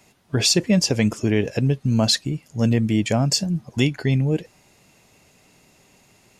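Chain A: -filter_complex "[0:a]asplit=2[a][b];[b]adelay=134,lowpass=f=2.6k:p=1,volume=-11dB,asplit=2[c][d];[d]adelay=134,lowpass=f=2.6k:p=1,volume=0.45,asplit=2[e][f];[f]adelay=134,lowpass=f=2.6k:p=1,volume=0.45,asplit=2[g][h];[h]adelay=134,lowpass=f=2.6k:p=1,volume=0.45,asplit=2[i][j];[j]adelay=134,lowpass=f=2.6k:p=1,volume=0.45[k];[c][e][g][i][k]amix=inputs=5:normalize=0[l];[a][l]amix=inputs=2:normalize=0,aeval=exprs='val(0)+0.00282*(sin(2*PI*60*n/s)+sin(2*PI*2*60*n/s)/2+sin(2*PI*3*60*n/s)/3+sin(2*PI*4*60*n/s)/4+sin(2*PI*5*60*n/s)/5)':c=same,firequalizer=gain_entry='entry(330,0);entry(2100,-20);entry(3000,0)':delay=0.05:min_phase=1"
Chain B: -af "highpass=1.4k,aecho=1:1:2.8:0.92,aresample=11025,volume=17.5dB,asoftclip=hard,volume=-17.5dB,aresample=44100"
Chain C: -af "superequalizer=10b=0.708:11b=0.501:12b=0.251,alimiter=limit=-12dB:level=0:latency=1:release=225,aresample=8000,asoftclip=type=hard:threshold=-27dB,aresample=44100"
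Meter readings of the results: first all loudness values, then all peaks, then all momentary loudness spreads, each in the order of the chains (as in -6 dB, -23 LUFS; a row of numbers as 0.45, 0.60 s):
-21.0, -27.0, -31.5 LUFS; -5.0, -12.0, -22.5 dBFS; 8, 18, 4 LU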